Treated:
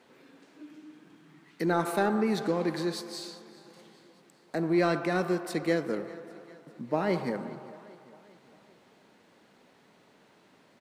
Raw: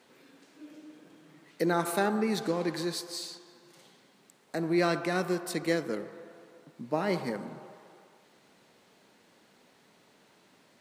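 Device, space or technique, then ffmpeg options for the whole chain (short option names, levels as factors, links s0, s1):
parallel distortion: -filter_complex "[0:a]asettb=1/sr,asplit=3[s0][s1][s2];[s0]atrim=end=0.634[s3];[s1]atrim=start=0.63:end=1.69,asetpts=PTS-STARTPTS,afade=t=in:d=0.004:c=qsin,afade=t=out:st=1.056:d=0.004:c=qsin,equalizer=f=550:t=o:w=0.56:g=-13[s4];[s2]atrim=start=1.686[s5];[s3][s4]acrossfade=d=0.004:c1=hsin:c2=qsin[s6];[s6][s5]acrossfade=d=0.004:c1=qsin:c2=hsin,aecho=1:1:400|800|1200|1600:0.0891|0.049|0.027|0.0148,asplit=2[s7][s8];[s8]asoftclip=type=hard:threshold=0.0531,volume=0.282[s9];[s7][s9]amix=inputs=2:normalize=0,highshelf=f=3800:g=-8"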